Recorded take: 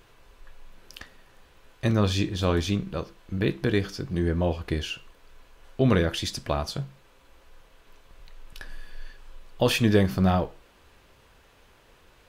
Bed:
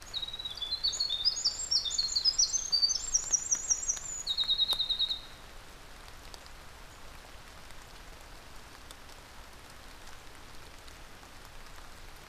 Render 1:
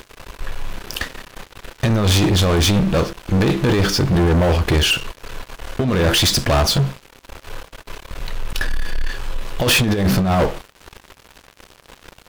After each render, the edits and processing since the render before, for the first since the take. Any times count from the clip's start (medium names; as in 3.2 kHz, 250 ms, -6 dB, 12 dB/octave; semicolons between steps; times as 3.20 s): compressor with a negative ratio -25 dBFS, ratio -0.5; waveshaping leveller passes 5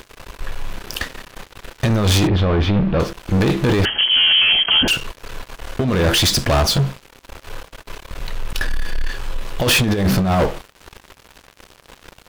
2.27–3.00 s: distance through air 350 m; 3.85–4.88 s: frequency inversion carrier 3.2 kHz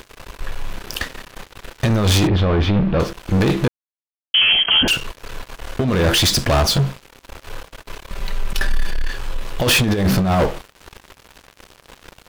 3.68–4.34 s: mute; 8.09–8.91 s: comb 5.1 ms, depth 55%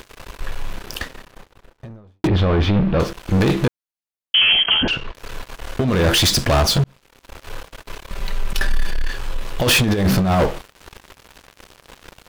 0.58–2.24 s: studio fade out; 4.74–5.15 s: distance through air 220 m; 6.84–7.44 s: fade in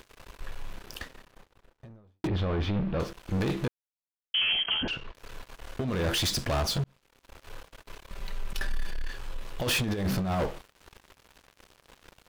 trim -12 dB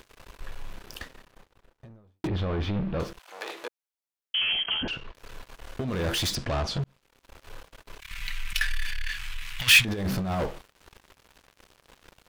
3.18–4.38 s: high-pass 720 Hz -> 230 Hz 24 dB/octave; 6.35–6.83 s: distance through air 85 m; 8.00–9.85 s: FFT filter 120 Hz 0 dB, 320 Hz -18 dB, 520 Hz -22 dB, 810 Hz -8 dB, 2.2 kHz +15 dB, 4.4 kHz +8 dB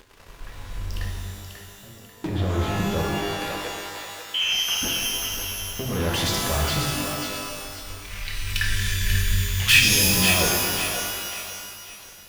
thinning echo 540 ms, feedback 38%, high-pass 650 Hz, level -6 dB; pitch-shifted reverb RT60 1.7 s, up +12 st, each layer -2 dB, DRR 0.5 dB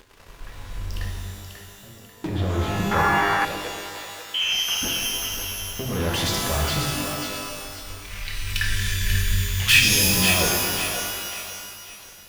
2.91–3.45 s: high-order bell 1.3 kHz +13 dB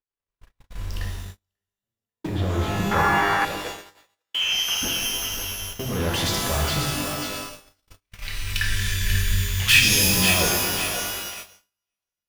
gate -31 dBFS, range -46 dB